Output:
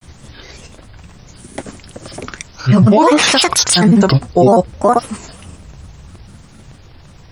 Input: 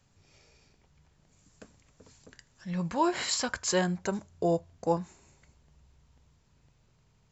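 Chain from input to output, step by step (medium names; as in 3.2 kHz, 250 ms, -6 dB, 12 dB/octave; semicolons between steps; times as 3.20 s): granulator, grains 20 per s, pitch spread up and down by 7 st; loudness maximiser +28 dB; trim -1 dB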